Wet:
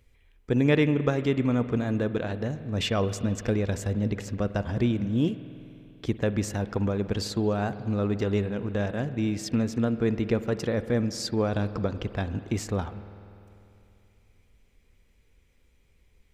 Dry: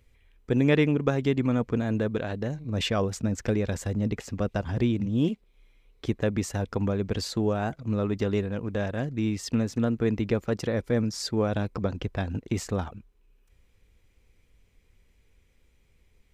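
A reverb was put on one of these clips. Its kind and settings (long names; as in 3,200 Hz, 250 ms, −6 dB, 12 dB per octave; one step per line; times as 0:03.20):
spring reverb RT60 2.9 s, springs 49 ms, chirp 25 ms, DRR 12.5 dB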